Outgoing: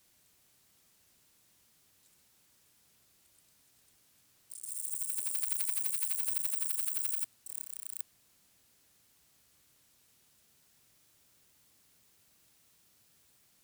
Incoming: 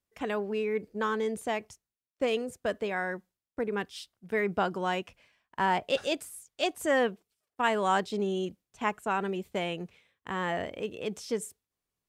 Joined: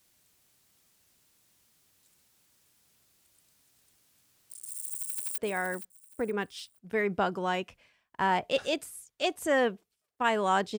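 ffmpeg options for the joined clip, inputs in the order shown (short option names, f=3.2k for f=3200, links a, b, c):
-filter_complex "[0:a]apad=whole_dur=10.78,atrim=end=10.78,atrim=end=5.382[a];[1:a]atrim=start=2.768:end=8.17[b];[a][b]acrossfade=d=0.004:c1=hsin:c2=hsin,asplit=2[c][d];[d]afade=t=in:st=4.96:d=0.01,afade=t=out:st=5.38:d=0.01,aecho=0:1:470|940|1410:0.298538|0.0895615|0.0268684[e];[c][e]amix=inputs=2:normalize=0"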